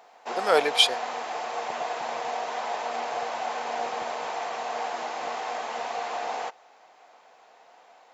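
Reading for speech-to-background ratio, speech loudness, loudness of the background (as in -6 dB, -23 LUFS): 9.0 dB, -22.5 LUFS, -31.5 LUFS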